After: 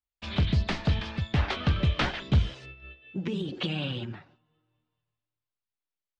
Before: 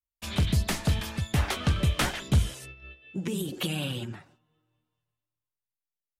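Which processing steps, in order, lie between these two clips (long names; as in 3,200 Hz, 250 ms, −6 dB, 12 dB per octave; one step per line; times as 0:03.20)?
low-pass filter 4,500 Hz 24 dB per octave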